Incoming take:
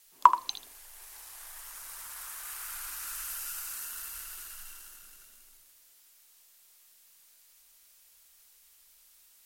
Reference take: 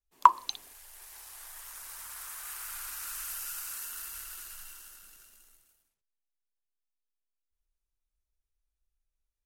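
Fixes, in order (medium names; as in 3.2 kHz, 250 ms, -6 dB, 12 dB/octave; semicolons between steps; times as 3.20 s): noise reduction 24 dB, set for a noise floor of -61 dBFS; inverse comb 79 ms -11.5 dB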